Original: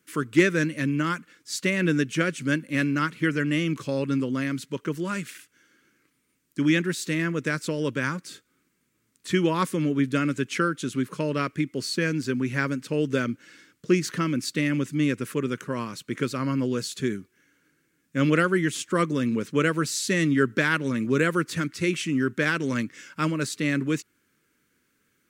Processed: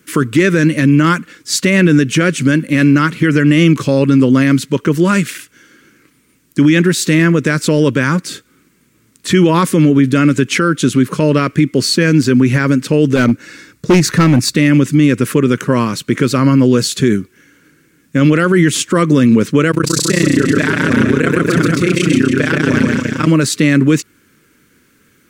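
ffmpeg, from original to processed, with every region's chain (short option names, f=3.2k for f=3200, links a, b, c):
-filter_complex "[0:a]asettb=1/sr,asplit=3[a][b][c];[a]atrim=end=13.164[d];[b]atrim=start=13.16:end=14.56,asetpts=PTS-STARTPTS,afade=t=in:d=0.004:c=qsin,afade=t=out:st=1.396:d=0.004:c=qsin,bandreject=f=3.1k:w=6.8,asubboost=boost=9.5:cutoff=110,volume=23dB,asoftclip=hard,volume=-23dB[e];[c]atrim=start=14.556[f];[d][e]acrossfade=d=0.004:c1=hsin:c2=qsin[g];[g][f]acrossfade=d=0.004:c1=qsin:c2=hsin,asettb=1/sr,asplit=3[h][i][j];[h]atrim=end=19.714[k];[i]atrim=start=19.71:end=23.28,asetpts=PTS-STARTPTS,afade=t=in:d=0.004:c=qsin,afade=t=out:st=3.566:d=0.004:c=qsin,tremolo=f=30:d=0.974,aecho=1:1:130|279.5|451.4|649.1|876.5:0.631|0.398|0.251|0.158|0.1,atrim=end_sample=157437[l];[j]atrim=start=23.276[m];[k][l]acrossfade=d=0.004:c1=hsin:c2=qsin[n];[n][m]acrossfade=d=0.004:c1=qsin:c2=hsin,lowshelf=f=440:g=4,alimiter=level_in=16.5dB:limit=-1dB:release=50:level=0:latency=1,volume=-1dB"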